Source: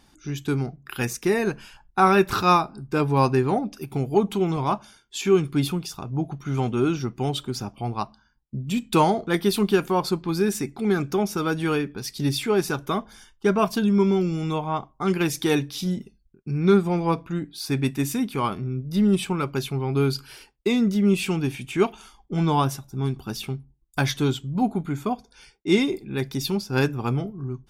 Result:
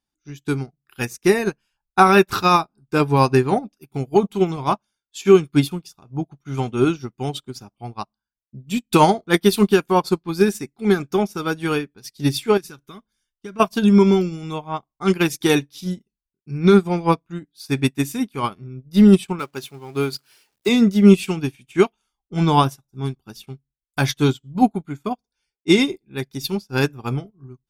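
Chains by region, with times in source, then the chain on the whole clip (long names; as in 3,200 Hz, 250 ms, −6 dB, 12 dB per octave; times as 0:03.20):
0:12.57–0:13.60: parametric band 710 Hz −10.5 dB 1.1 octaves + downward compressor 3 to 1, threshold −26 dBFS
0:19.39–0:20.69: converter with a step at zero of −37.5 dBFS + high-pass filter 270 Hz 6 dB per octave
whole clip: high-shelf EQ 2,800 Hz +4.5 dB; boost into a limiter +10 dB; expander for the loud parts 2.5 to 1, over −32 dBFS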